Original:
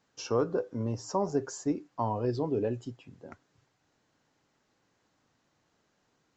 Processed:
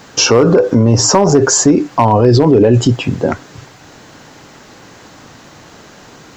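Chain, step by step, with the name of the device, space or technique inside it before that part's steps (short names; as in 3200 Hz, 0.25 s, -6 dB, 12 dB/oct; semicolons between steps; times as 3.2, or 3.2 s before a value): loud club master (compressor 2:1, threshold -33 dBFS, peak gain reduction 6.5 dB; hard clip -26 dBFS, distortion -21 dB; maximiser +35.5 dB); gain -1 dB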